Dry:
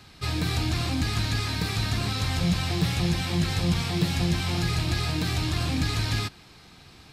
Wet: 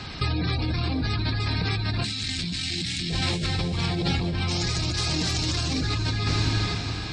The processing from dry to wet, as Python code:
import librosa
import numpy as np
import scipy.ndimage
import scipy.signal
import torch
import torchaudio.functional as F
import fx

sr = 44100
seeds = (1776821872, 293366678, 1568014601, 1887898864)

y = fx.peak_eq(x, sr, hz=6300.0, db=11.0, octaves=1.1, at=(4.48, 5.81))
y = np.clip(y, -10.0 ** (-25.0 / 20.0), 10.0 ** (-25.0 / 20.0))
y = fx.graphic_eq(y, sr, hz=(125, 250, 500, 1000, 2000, 4000, 8000), db=(-4, 10, -9, -11, 7, 9, 10), at=(2.04, 3.1))
y = fx.spec_gate(y, sr, threshold_db=-25, keep='strong')
y = fx.echo_diffused(y, sr, ms=457, feedback_pct=41, wet_db=-10)
y = fx.over_compress(y, sr, threshold_db=-34.0, ratio=-1.0)
y = y * 10.0 ** (8.0 / 20.0)